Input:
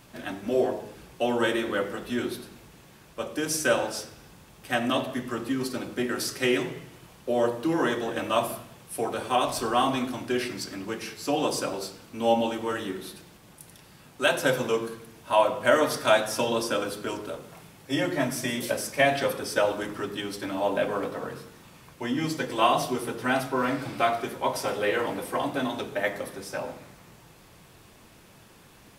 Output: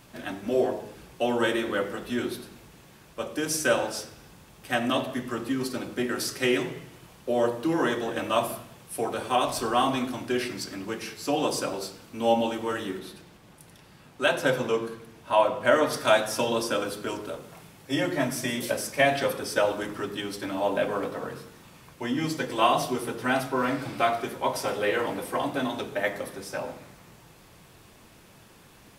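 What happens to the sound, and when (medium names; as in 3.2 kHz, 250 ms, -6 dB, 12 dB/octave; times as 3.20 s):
12.99–15.93 s: treble shelf 5.9 kHz -7.5 dB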